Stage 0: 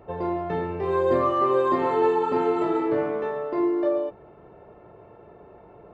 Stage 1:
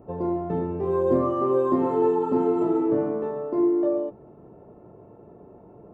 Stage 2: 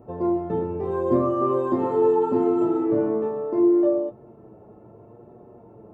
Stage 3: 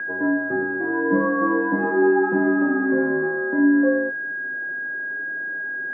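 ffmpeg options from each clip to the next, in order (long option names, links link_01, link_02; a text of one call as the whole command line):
ffmpeg -i in.wav -af "equalizer=frequency=125:width_type=o:width=1:gain=4,equalizer=frequency=250:width_type=o:width=1:gain=9,equalizer=frequency=2000:width_type=o:width=1:gain=-10,equalizer=frequency=4000:width_type=o:width=1:gain=-11,volume=-2.5dB" out.wav
ffmpeg -i in.wav -af "flanger=delay=8.3:depth=1:regen=42:speed=0.75:shape=sinusoidal,volume=4.5dB" out.wav
ffmpeg -i in.wav -af "aeval=exprs='val(0)+0.0447*sin(2*PI*1700*n/s)':channel_layout=same,highpass=frequency=270:width_type=q:width=0.5412,highpass=frequency=270:width_type=q:width=1.307,lowpass=frequency=2300:width_type=q:width=0.5176,lowpass=frequency=2300:width_type=q:width=0.7071,lowpass=frequency=2300:width_type=q:width=1.932,afreqshift=-61,volume=1.5dB" out.wav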